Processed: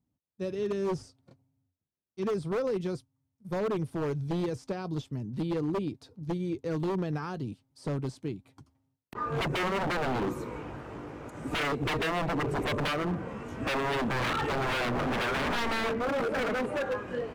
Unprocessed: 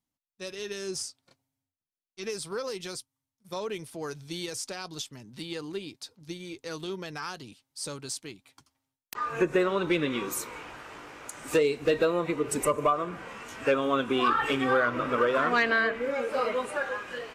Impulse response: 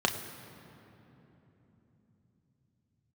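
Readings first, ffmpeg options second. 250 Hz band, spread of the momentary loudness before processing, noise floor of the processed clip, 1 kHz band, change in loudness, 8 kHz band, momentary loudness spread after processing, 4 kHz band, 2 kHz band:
+0.5 dB, 17 LU, −83 dBFS, −2.5 dB, −2.5 dB, −11.0 dB, 10 LU, −1.5 dB, −3.0 dB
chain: -filter_complex "[0:a]highpass=63,tiltshelf=frequency=970:gain=9.5,acrossover=split=4000[link_01][link_02];[link_02]acompressor=threshold=-54dB:ratio=4:attack=1:release=60[link_03];[link_01][link_03]amix=inputs=2:normalize=0,lowshelf=frequency=170:gain=8,acontrast=62,aeval=exprs='0.133*(abs(mod(val(0)/0.133+3,4)-2)-1)':channel_layout=same,volume=-7dB"

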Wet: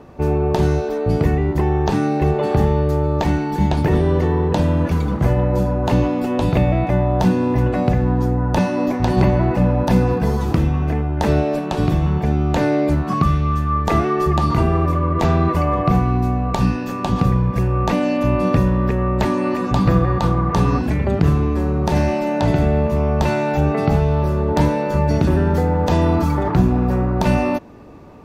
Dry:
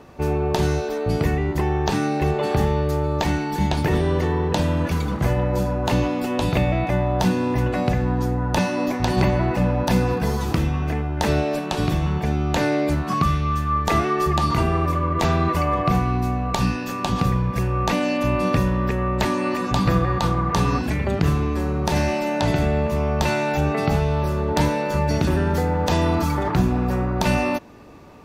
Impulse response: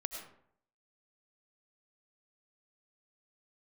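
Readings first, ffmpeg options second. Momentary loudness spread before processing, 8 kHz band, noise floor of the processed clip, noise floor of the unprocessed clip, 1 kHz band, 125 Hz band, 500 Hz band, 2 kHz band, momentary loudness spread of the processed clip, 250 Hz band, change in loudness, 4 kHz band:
3 LU, −4.0 dB, −24 dBFS, −27 dBFS, +1.5 dB, +4.5 dB, +3.5 dB, −1.0 dB, 3 LU, +4.0 dB, +3.5 dB, −3.5 dB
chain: -af "tiltshelf=frequency=1400:gain=4.5"

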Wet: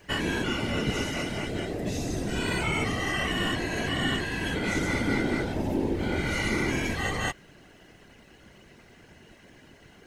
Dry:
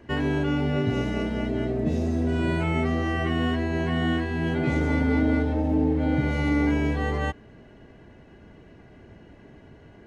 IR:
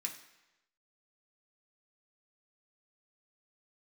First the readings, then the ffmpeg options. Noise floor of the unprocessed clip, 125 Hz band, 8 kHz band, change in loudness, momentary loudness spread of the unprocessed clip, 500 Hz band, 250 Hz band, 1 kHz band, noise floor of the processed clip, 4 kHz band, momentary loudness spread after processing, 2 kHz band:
−50 dBFS, −6.5 dB, can't be measured, −3.5 dB, 5 LU, −3.5 dB, −6.0 dB, −1.5 dB, −55 dBFS, +6.5 dB, 5 LU, +2.5 dB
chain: -af "afftfilt=real='hypot(re,im)*cos(2*PI*random(0))':imag='hypot(re,im)*sin(2*PI*random(1))':win_size=512:overlap=0.75,crystalizer=i=9:c=0"

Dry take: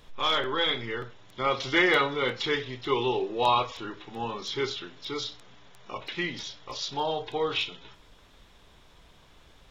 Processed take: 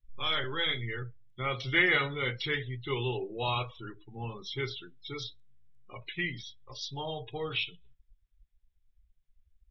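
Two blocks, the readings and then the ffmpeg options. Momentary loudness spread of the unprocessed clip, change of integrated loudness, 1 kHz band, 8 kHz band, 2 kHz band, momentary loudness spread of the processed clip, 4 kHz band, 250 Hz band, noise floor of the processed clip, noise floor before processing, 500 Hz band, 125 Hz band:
14 LU, −4.0 dB, −9.5 dB, −9.5 dB, −1.5 dB, 16 LU, −4.5 dB, −6.0 dB, −74 dBFS, −56 dBFS, −7.5 dB, +4.0 dB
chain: -af "afftdn=noise_reduction=34:noise_floor=-37,equalizer=frequency=125:width_type=o:width=1:gain=7,equalizer=frequency=250:width_type=o:width=1:gain=-7,equalizer=frequency=500:width_type=o:width=1:gain=-5,equalizer=frequency=1000:width_type=o:width=1:gain=-11,equalizer=frequency=2000:width_type=o:width=1:gain=3,equalizer=frequency=4000:width_type=o:width=1:gain=-5"

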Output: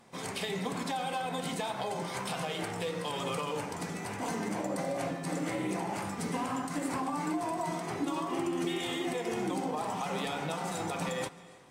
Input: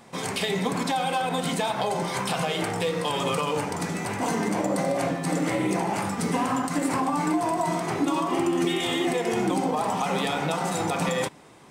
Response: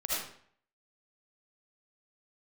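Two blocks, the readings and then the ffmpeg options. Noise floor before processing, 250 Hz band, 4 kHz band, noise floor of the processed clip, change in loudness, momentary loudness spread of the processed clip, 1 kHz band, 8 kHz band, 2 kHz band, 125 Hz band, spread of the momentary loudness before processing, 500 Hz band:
−33 dBFS, −8.5 dB, −8.0 dB, −41 dBFS, −8.5 dB, 3 LU, −8.5 dB, −8.0 dB, −8.0 dB, −8.5 dB, 3 LU, −8.5 dB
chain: -filter_complex "[0:a]asplit=2[link_01][link_02];[1:a]atrim=start_sample=2205,asetrate=25137,aresample=44100,adelay=139[link_03];[link_02][link_03]afir=irnorm=-1:irlink=0,volume=-28.5dB[link_04];[link_01][link_04]amix=inputs=2:normalize=0,volume=-8.5dB" -ar 44100 -c:a aac -b:a 64k

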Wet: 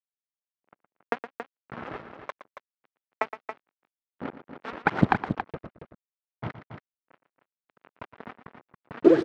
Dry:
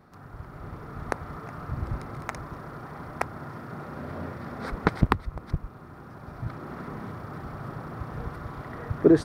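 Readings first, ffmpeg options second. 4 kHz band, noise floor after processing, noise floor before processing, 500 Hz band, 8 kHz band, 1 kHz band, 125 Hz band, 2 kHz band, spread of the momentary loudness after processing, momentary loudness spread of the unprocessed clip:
−1.0 dB, below −85 dBFS, −46 dBFS, +0.5 dB, below −10 dB, +1.5 dB, −5.0 dB, +2.5 dB, 24 LU, 15 LU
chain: -filter_complex "[0:a]agate=range=-12dB:threshold=-33dB:ratio=16:detection=peak,aphaser=in_gain=1:out_gain=1:delay=4.6:decay=0.69:speed=1.4:type=sinusoidal,acrusher=bits=4:mix=0:aa=0.5,highpass=240,lowpass=2700,asplit=2[link_01][link_02];[link_02]aecho=0:1:116.6|277:0.251|0.355[link_03];[link_01][link_03]amix=inputs=2:normalize=0"

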